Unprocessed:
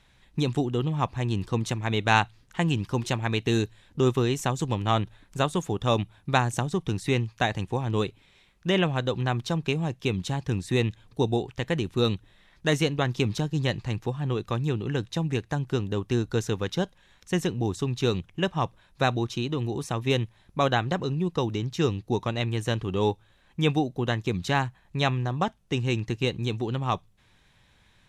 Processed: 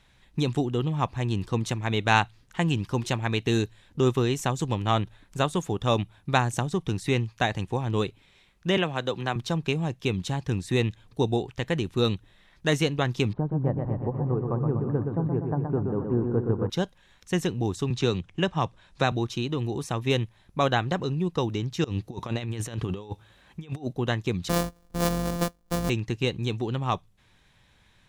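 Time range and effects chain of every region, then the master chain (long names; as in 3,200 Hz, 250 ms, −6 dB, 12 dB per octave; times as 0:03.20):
0:08.77–0:09.36: high-pass filter 270 Hz 6 dB per octave + multiband upward and downward compressor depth 40%
0:13.33–0:16.70: low-pass filter 1,100 Hz 24 dB per octave + feedback echo with a swinging delay time 123 ms, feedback 67%, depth 51 cents, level −5 dB
0:17.90–0:19.12: low-pass filter 9,000 Hz 24 dB per octave + multiband upward and downward compressor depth 40%
0:21.84–0:23.93: high-pass filter 49 Hz + compressor whose output falls as the input rises −31 dBFS, ratio −0.5
0:24.49–0:25.90: samples sorted by size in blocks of 256 samples + parametric band 2,400 Hz −8 dB 1.4 octaves + comb filter 4.1 ms, depth 46%
whole clip: no processing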